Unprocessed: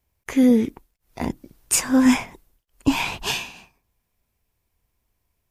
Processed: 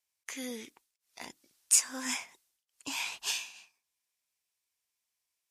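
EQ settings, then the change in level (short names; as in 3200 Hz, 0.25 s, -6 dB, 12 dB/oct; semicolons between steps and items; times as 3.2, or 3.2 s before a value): LPF 7100 Hz 12 dB/oct; differentiator; dynamic EQ 3500 Hz, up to -4 dB, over -45 dBFS, Q 0.86; +2.0 dB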